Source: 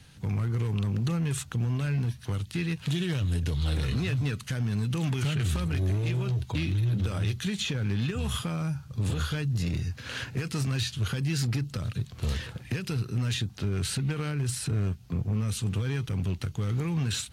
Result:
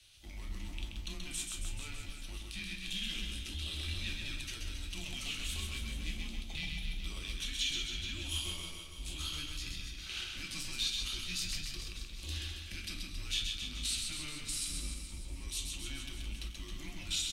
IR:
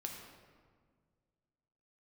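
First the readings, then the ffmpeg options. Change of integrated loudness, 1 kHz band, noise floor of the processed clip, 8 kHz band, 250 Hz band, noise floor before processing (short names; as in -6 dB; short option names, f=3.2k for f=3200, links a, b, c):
-9.0 dB, -13.0 dB, -47 dBFS, -1.0 dB, -18.0 dB, -47 dBFS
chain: -filter_complex "[0:a]highshelf=f=2.2k:t=q:w=1.5:g=11,afreqshift=-150,aecho=1:1:130|273|430.3|603.3|793.7:0.631|0.398|0.251|0.158|0.1[a];[1:a]atrim=start_sample=2205,atrim=end_sample=3969,asetrate=66150,aresample=44100[b];[a][b]afir=irnorm=-1:irlink=0,volume=-8dB"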